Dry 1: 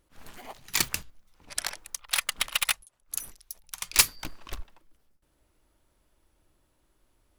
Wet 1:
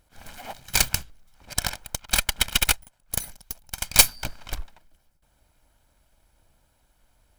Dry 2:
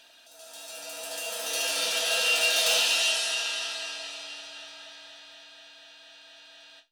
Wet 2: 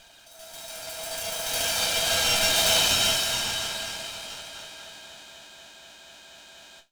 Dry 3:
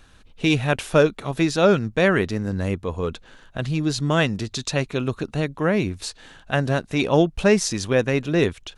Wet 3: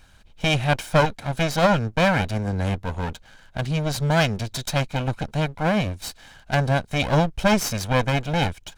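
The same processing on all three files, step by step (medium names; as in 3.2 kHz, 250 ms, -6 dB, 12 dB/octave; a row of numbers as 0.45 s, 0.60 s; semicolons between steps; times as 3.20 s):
comb filter that takes the minimum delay 1.3 ms; normalise loudness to -23 LUFS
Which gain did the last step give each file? +6.5 dB, +4.5 dB, 0.0 dB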